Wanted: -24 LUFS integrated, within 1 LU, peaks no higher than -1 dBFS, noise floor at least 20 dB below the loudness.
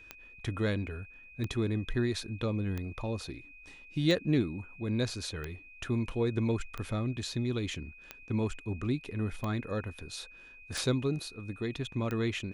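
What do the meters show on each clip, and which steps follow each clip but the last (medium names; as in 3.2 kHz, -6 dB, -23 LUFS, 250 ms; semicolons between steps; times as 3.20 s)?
clicks found 10; steady tone 2.5 kHz; tone level -51 dBFS; loudness -34.0 LUFS; peak level -15.5 dBFS; loudness target -24.0 LUFS
-> de-click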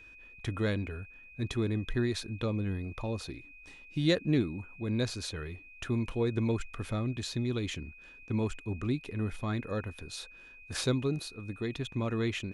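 clicks found 0; steady tone 2.5 kHz; tone level -51 dBFS
-> band-stop 2.5 kHz, Q 30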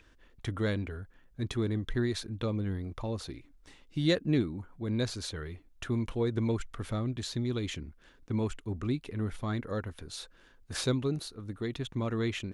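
steady tone not found; loudness -34.0 LUFS; peak level -15.5 dBFS; loudness target -24.0 LUFS
-> trim +10 dB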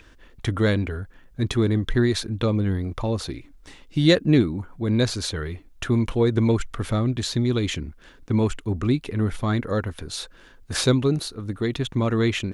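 loudness -24.0 LUFS; peak level -5.5 dBFS; noise floor -51 dBFS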